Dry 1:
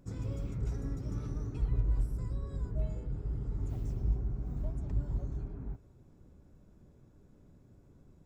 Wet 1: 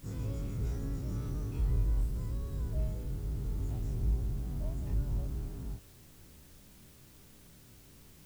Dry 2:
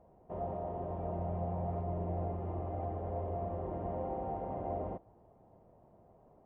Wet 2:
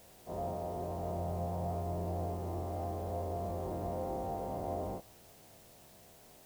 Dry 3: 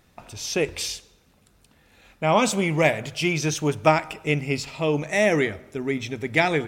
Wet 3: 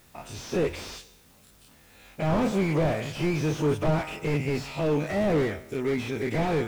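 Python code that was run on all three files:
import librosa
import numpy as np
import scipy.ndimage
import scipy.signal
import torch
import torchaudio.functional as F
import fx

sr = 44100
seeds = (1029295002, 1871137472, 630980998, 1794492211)

y = fx.spec_dilate(x, sr, span_ms=60)
y = fx.dmg_noise_colour(y, sr, seeds[0], colour='white', level_db=-58.0)
y = fx.slew_limit(y, sr, full_power_hz=59.0)
y = y * librosa.db_to_amplitude(-3.0)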